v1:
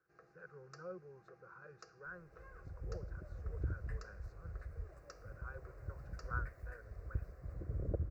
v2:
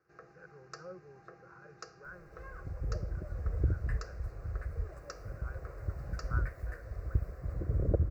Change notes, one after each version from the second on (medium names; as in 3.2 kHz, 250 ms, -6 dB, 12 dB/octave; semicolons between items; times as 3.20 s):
first sound +9.5 dB; second sound +9.0 dB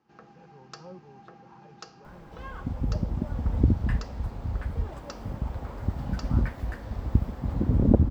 speech: add peaking EQ 1.5 kHz -14 dB 0.4 oct; second sound +6.0 dB; master: remove static phaser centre 880 Hz, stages 6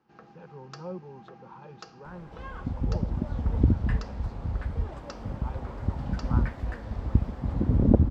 speech +8.0 dB; master: add distance through air 51 m